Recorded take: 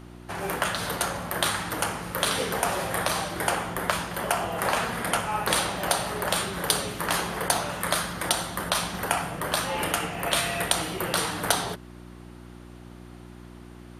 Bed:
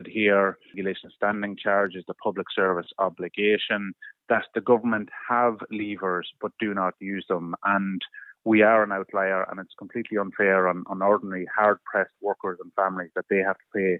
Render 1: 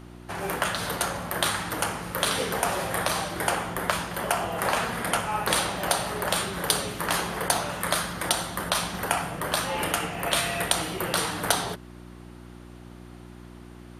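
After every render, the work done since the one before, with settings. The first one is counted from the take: no audible change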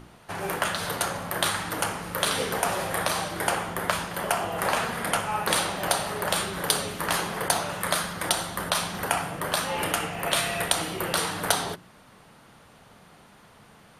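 de-hum 60 Hz, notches 6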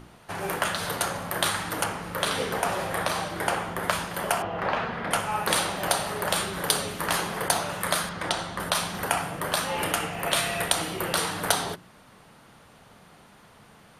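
1.84–3.83 s: treble shelf 5.1 kHz -6 dB; 4.42–5.11 s: distance through air 250 m; 8.09–8.60 s: distance through air 76 m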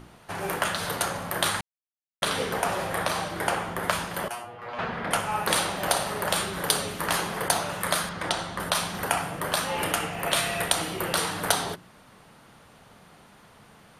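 1.61–2.22 s: mute; 4.28–4.79 s: feedback comb 120 Hz, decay 0.26 s, mix 100%; 5.77–6.24 s: flutter echo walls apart 9.6 m, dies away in 0.31 s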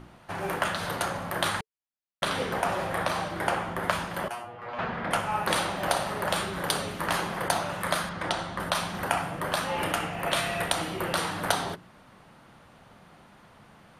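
treble shelf 4.3 kHz -8.5 dB; band-stop 440 Hz, Q 12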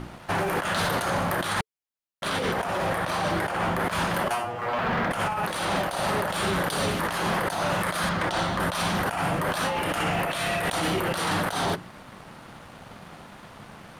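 compressor with a negative ratio -33 dBFS, ratio -1; waveshaping leveller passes 2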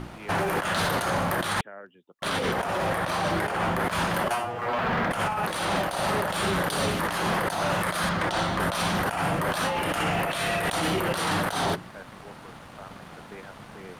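add bed -21.5 dB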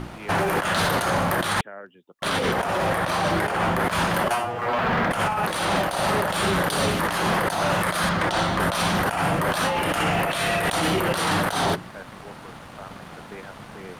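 trim +3.5 dB

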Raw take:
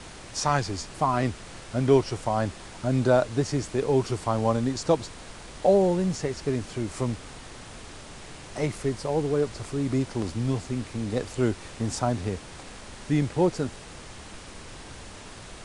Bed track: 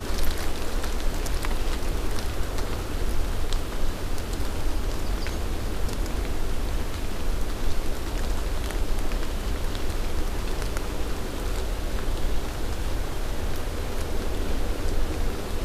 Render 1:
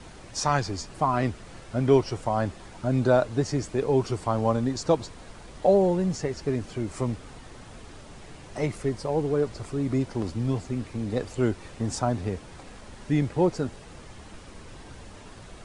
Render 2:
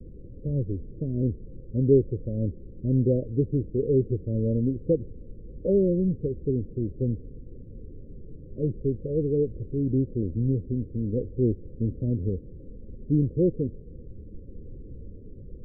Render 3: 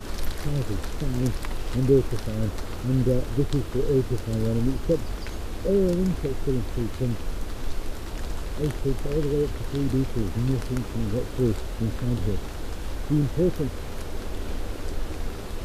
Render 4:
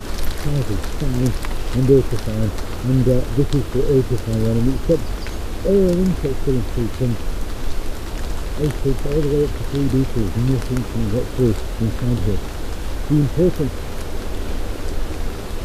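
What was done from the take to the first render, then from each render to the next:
noise reduction 7 dB, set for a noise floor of -44 dBFS
steep low-pass 530 Hz 96 dB/octave; bass shelf 100 Hz +7 dB
add bed track -4.5 dB
trim +6.5 dB; peak limiter -3 dBFS, peak gain reduction 1 dB

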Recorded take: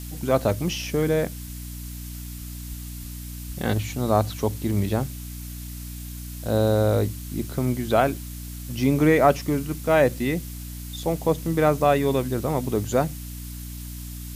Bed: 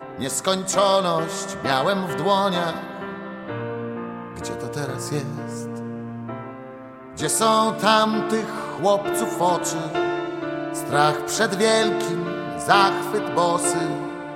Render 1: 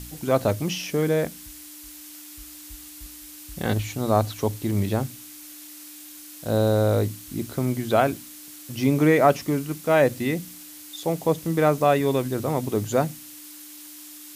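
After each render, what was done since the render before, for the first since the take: de-hum 60 Hz, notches 4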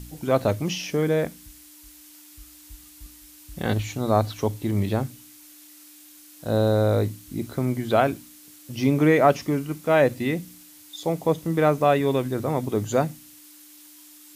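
noise print and reduce 6 dB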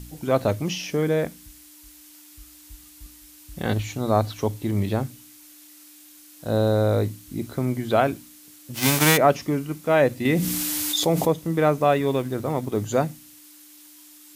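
8.74–9.16 s: formants flattened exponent 0.3; 10.25–11.31 s: level flattener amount 70%; 11.92–12.78 s: companding laws mixed up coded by A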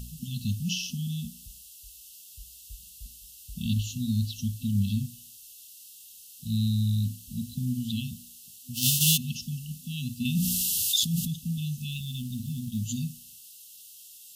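FFT band-reject 250–2600 Hz; dynamic bell 140 Hz, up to -4 dB, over -42 dBFS, Q 2.6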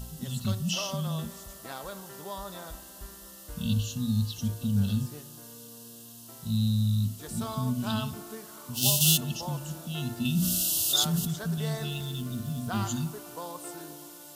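add bed -20 dB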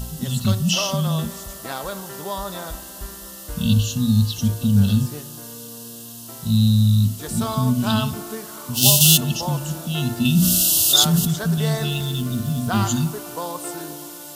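trim +10 dB; peak limiter -1 dBFS, peak gain reduction 2.5 dB

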